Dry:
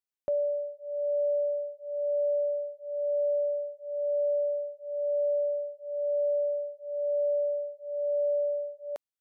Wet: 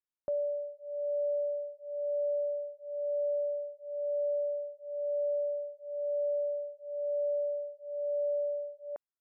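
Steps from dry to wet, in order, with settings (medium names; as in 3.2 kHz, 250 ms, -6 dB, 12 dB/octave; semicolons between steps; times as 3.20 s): low-pass 1.7 kHz 24 dB/octave; trim -4 dB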